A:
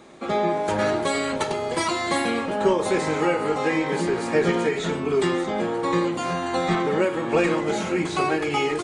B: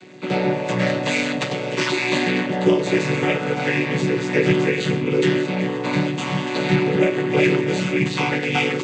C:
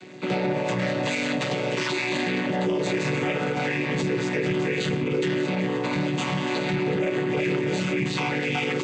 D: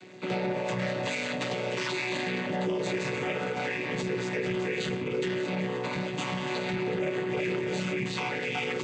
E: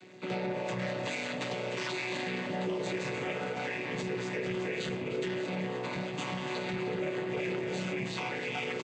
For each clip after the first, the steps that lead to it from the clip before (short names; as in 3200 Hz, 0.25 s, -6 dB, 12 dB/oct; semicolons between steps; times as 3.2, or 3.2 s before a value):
chord vocoder minor triad, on B2; resonant high shelf 1600 Hz +10.5 dB, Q 1.5; in parallel at -3.5 dB: soft clip -16 dBFS, distortion -16 dB
limiter -17.5 dBFS, peak gain reduction 11.5 dB
de-hum 48.94 Hz, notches 8; gain -4.5 dB
frequency-shifting echo 0.304 s, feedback 58%, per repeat +150 Hz, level -15.5 dB; gain -4 dB